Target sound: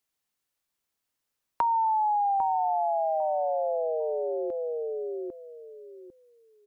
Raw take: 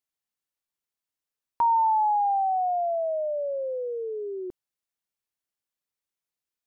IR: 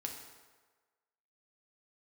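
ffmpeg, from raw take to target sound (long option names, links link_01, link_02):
-filter_complex "[0:a]asplit=2[link_01][link_02];[link_02]adelay=799,lowpass=frequency=1200:poles=1,volume=-4.5dB,asplit=2[link_03][link_04];[link_04]adelay=799,lowpass=frequency=1200:poles=1,volume=0.19,asplit=2[link_05][link_06];[link_06]adelay=799,lowpass=frequency=1200:poles=1,volume=0.19[link_07];[link_01][link_03][link_05][link_07]amix=inputs=4:normalize=0,acrossover=split=350|1000[link_08][link_09][link_10];[link_08]acompressor=threshold=-54dB:ratio=4[link_11];[link_09]acompressor=threshold=-36dB:ratio=4[link_12];[link_10]acompressor=threshold=-42dB:ratio=4[link_13];[link_11][link_12][link_13]amix=inputs=3:normalize=0,volume=6.5dB"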